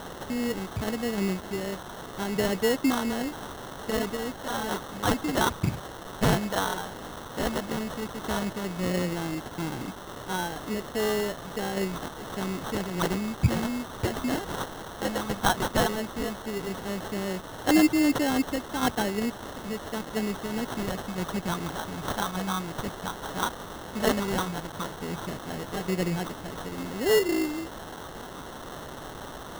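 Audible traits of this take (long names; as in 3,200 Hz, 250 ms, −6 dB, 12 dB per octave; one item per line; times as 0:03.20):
tremolo saw down 0.85 Hz, depth 45%
a quantiser's noise floor 8 bits, dither triangular
phaser sweep stages 2, 0.12 Hz, lowest notch 510–1,400 Hz
aliases and images of a low sample rate 2,400 Hz, jitter 0%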